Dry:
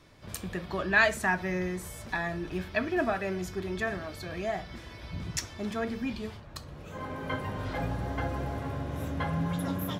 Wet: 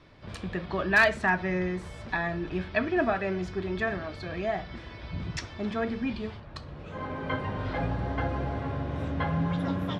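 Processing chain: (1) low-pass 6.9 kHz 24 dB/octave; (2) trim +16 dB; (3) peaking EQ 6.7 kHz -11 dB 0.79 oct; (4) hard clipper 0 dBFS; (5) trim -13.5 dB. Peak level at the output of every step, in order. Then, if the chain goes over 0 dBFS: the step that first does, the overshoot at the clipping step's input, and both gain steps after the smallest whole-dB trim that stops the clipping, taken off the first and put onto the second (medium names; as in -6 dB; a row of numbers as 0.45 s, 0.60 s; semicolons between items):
-11.5 dBFS, +4.5 dBFS, +4.0 dBFS, 0.0 dBFS, -13.5 dBFS; step 2, 4.0 dB; step 2 +12 dB, step 5 -9.5 dB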